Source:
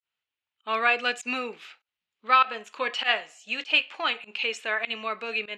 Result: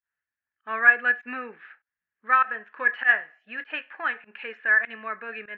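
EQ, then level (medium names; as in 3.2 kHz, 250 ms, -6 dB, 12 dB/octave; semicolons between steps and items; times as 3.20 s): resonant low-pass 1.7 kHz, resonance Q 11; distance through air 150 m; bass shelf 200 Hz +8.5 dB; -7.0 dB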